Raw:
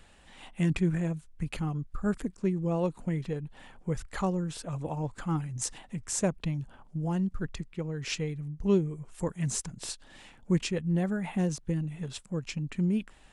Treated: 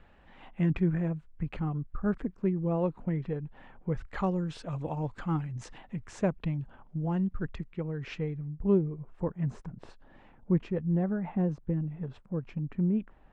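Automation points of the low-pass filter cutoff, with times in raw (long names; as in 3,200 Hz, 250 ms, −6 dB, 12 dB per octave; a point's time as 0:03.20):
0:03.90 1,900 Hz
0:04.44 3,900 Hz
0:05.07 3,900 Hz
0:05.69 2,400 Hz
0:07.72 2,400 Hz
0:08.79 1,200 Hz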